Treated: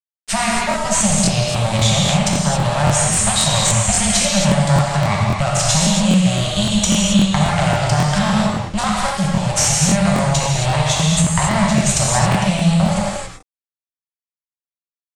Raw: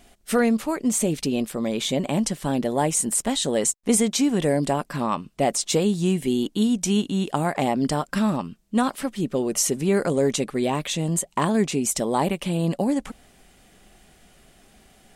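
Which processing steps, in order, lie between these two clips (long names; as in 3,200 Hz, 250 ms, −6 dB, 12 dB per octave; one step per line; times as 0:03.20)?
harmonic generator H 4 −8 dB, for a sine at −7.5 dBFS
Chebyshev band-stop filter 210–570 Hz, order 5
parametric band 64 Hz +13 dB 2.1 octaves
downward compressor 2.5 to 1, threshold −26 dBFS, peak gain reduction 10 dB
high-shelf EQ 3,300 Hz +8 dB
centre clipping without the shift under −30.5 dBFS
low-pass filter 8,200 Hz 24 dB per octave
reverb whose tail is shaped and stops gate 300 ms flat, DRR −4 dB
regular buffer underruns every 0.27 s, samples 1,024, repeat, from 0:00.69
level +5 dB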